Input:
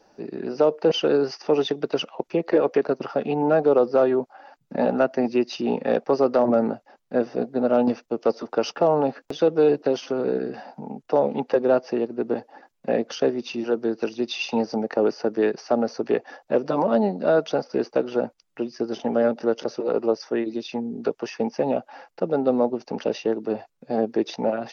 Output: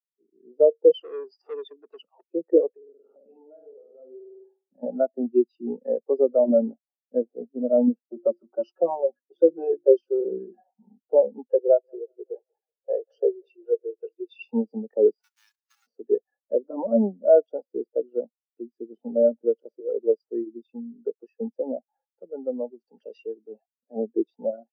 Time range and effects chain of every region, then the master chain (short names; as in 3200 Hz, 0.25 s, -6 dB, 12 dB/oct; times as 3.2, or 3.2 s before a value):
0.95–2.24 HPF 130 Hz 24 dB/oct + upward compressor, threshold -22 dBFS + core saturation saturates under 2100 Hz
2.74–4.83 de-hum 114.5 Hz, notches 37 + flutter echo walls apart 8.5 m, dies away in 0.88 s + compressor 12:1, threshold -28 dBFS
8.01–10.92 notches 50/100/150/200/250/300/350 Hz + comb 5.4 ms, depth 85%
11.58–14.49 steep high-pass 360 Hz 72 dB/oct + thinning echo 0.188 s, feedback 74%, high-pass 480 Hz, level -16 dB
15.21–15.86 spectral whitening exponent 0.1 + compressor 3:1, threshold -24 dBFS + steep high-pass 960 Hz
22.08–23.96 G.711 law mismatch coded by mu + tilt shelf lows -5.5 dB, about 1300 Hz
whole clip: steep high-pass 170 Hz 48 dB/oct; AGC gain up to 6 dB; spectral expander 2.5:1; gain -2.5 dB